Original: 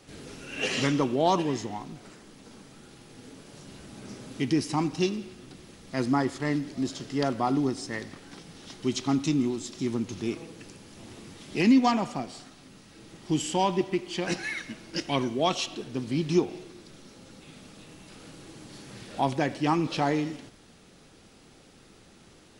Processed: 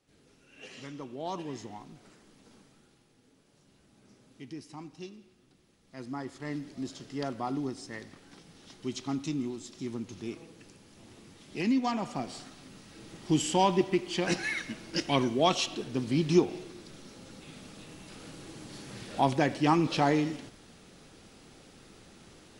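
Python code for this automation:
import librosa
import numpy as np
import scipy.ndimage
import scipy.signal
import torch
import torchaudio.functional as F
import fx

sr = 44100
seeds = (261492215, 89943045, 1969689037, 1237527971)

y = fx.gain(x, sr, db=fx.line((0.82, -19.0), (1.64, -8.5), (2.55, -8.5), (3.21, -17.5), (5.78, -17.5), (6.62, -7.5), (11.87, -7.5), (12.32, 0.5)))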